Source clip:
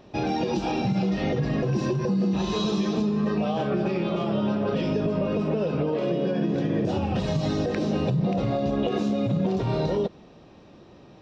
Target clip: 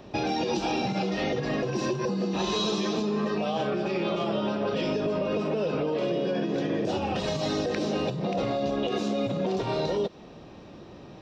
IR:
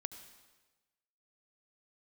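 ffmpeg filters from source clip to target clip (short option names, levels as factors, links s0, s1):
-filter_complex "[0:a]acrossover=split=280|2700[s0][s1][s2];[s0]acompressor=threshold=0.00891:ratio=5[s3];[s1]alimiter=level_in=1.12:limit=0.0631:level=0:latency=1:release=144,volume=0.891[s4];[s3][s4][s2]amix=inputs=3:normalize=0,volume=1.58"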